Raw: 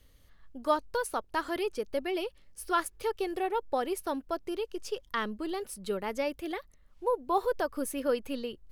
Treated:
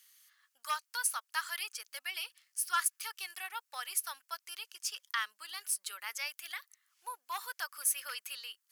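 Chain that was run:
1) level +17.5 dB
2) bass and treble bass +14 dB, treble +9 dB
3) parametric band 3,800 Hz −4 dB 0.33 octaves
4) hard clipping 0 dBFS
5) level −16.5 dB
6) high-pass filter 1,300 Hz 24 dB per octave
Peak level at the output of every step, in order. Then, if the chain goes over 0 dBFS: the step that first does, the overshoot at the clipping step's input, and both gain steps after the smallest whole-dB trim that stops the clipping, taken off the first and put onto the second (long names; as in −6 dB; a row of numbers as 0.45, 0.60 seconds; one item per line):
+3.5, +4.5, +4.5, 0.0, −16.5, −16.0 dBFS
step 1, 4.5 dB
step 1 +12.5 dB, step 5 −11.5 dB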